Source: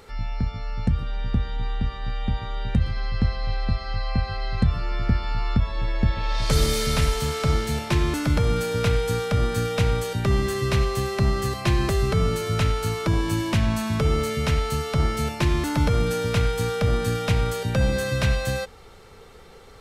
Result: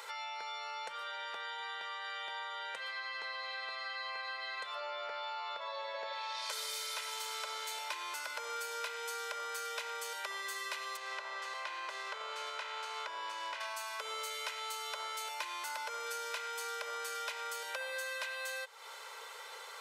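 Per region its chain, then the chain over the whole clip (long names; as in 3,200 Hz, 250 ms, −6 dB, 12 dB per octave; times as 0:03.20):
0:04.75–0:06.13: low-pass filter 5,900 Hz + parametric band 580 Hz +10.5 dB 0.48 octaves
0:10.95–0:13.60: compressing power law on the bin magnitudes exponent 0.67 + downward compressor 5 to 1, threshold −25 dBFS + head-to-tape spacing loss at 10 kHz 24 dB
whole clip: high-pass filter 730 Hz 24 dB per octave; comb filter 2 ms, depth 64%; downward compressor, threshold −43 dBFS; level +4 dB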